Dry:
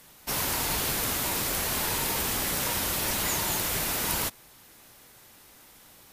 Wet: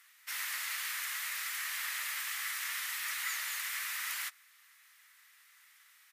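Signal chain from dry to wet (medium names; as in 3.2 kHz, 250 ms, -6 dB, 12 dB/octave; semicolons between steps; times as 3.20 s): ladder high-pass 1.7 kHz, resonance 65%; harmony voices -7 st -8 dB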